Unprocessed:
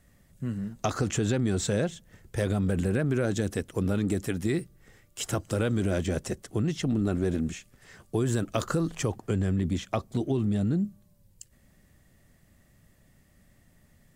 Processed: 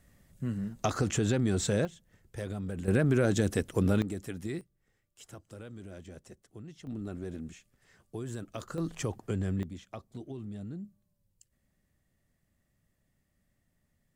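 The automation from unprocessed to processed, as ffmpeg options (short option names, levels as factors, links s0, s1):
-af "asetnsamples=n=441:p=0,asendcmd='1.85 volume volume -10dB;2.88 volume volume 1dB;4.02 volume volume -9dB;4.61 volume volume -19dB;6.87 volume volume -12dB;8.78 volume volume -5dB;9.63 volume volume -14.5dB',volume=0.841"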